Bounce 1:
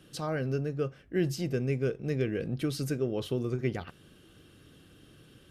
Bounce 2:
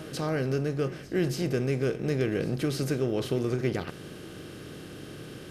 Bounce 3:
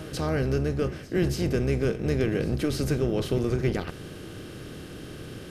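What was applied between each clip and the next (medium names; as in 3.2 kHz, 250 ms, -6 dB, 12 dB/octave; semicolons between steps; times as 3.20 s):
spectral levelling over time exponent 0.6; pre-echo 283 ms -17.5 dB
octave divider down 1 oct, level -3 dB; trim +1.5 dB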